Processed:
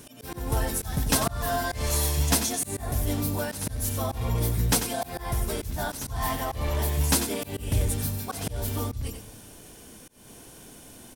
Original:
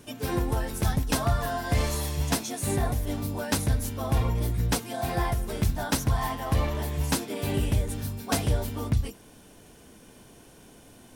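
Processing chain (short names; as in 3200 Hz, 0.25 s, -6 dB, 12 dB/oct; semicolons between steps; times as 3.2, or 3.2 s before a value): echo 93 ms -10.5 dB; Schroeder reverb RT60 1.6 s, combs from 28 ms, DRR 19 dB; auto swell 0.234 s; high shelf 5200 Hz +8 dB; in parallel at -11 dB: overloaded stage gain 24.5 dB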